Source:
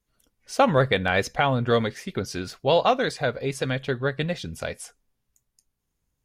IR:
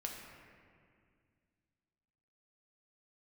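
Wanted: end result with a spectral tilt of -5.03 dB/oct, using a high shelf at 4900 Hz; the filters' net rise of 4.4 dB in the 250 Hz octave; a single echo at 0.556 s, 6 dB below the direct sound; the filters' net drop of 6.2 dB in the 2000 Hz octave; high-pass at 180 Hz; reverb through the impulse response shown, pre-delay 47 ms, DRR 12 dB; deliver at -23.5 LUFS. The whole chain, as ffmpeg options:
-filter_complex "[0:a]highpass=180,equalizer=f=250:t=o:g=7,equalizer=f=2k:t=o:g=-8,highshelf=f=4.9k:g=-5,aecho=1:1:556:0.501,asplit=2[a][b];[1:a]atrim=start_sample=2205,adelay=47[c];[b][c]afir=irnorm=-1:irlink=0,volume=-11.5dB[d];[a][d]amix=inputs=2:normalize=0,volume=-0.5dB"

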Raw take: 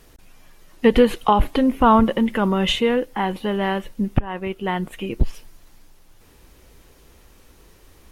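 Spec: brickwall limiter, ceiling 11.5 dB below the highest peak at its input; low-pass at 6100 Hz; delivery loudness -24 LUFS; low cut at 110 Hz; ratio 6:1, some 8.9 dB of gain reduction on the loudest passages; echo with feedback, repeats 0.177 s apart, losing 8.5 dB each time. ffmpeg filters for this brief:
-af "highpass=110,lowpass=6.1k,acompressor=threshold=-19dB:ratio=6,alimiter=limit=-20dB:level=0:latency=1,aecho=1:1:177|354|531|708:0.376|0.143|0.0543|0.0206,volume=5dB"

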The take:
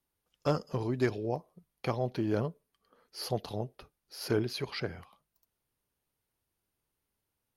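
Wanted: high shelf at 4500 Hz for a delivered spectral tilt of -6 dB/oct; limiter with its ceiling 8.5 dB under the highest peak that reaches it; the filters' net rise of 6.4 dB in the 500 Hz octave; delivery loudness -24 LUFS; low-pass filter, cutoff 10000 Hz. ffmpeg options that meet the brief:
-af "lowpass=10k,equalizer=f=500:t=o:g=8,highshelf=f=4.5k:g=-4,volume=9.5dB,alimiter=limit=-10.5dB:level=0:latency=1"

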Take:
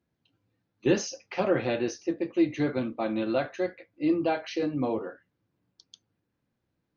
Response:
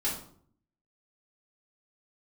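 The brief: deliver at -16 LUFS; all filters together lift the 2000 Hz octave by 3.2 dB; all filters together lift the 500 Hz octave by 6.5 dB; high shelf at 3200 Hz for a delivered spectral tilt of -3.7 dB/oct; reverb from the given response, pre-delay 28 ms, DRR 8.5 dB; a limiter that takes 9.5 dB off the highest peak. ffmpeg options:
-filter_complex "[0:a]equalizer=f=500:t=o:g=8,equalizer=f=2k:t=o:g=5.5,highshelf=f=3.2k:g=-5.5,alimiter=limit=-15.5dB:level=0:latency=1,asplit=2[a][b];[1:a]atrim=start_sample=2205,adelay=28[c];[b][c]afir=irnorm=-1:irlink=0,volume=-14.5dB[d];[a][d]amix=inputs=2:normalize=0,volume=10.5dB"

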